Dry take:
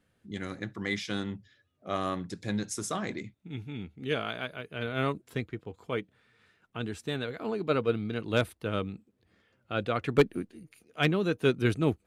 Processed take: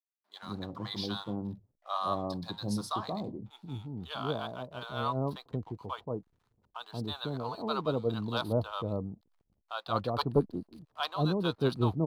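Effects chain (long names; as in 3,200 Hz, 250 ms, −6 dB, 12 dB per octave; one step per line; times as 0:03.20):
drawn EQ curve 140 Hz 0 dB, 430 Hz −4 dB, 1,000 Hz +10 dB, 2,100 Hz −20 dB, 4,400 Hz +9 dB, 7,000 Hz −17 dB, 11,000 Hz −2 dB
slack as between gear wheels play −56 dBFS
multiband delay without the direct sound highs, lows 180 ms, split 750 Hz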